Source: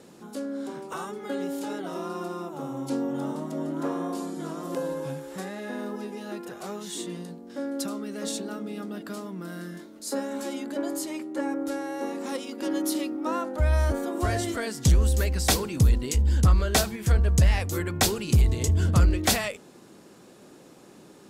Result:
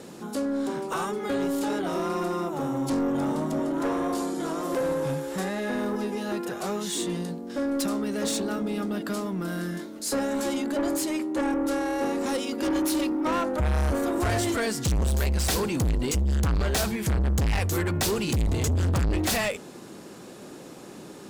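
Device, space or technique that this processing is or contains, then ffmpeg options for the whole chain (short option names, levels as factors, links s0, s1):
saturation between pre-emphasis and de-emphasis: -filter_complex "[0:a]asettb=1/sr,asplit=3[s0][s1][s2];[s0]atrim=end=3.594[s3];[s1]atrim=start=3.59:end=4.81,asetpts=PTS-STARTPTS,afade=t=in:d=0.004:c=qsin,afade=t=out:st=1.216:d=0.004:c=qsin,highpass=250[s4];[s2]atrim=start=4.806[s5];[s3][s4]acrossfade=d=0.004:c1=hsin:c2=qsin[s6];[s6][s5]acrossfade=d=0.004:c1=qsin:c2=hsin,highshelf=f=8200:g=6,asoftclip=type=tanh:threshold=0.0355,highshelf=f=8200:g=-6,volume=2.37"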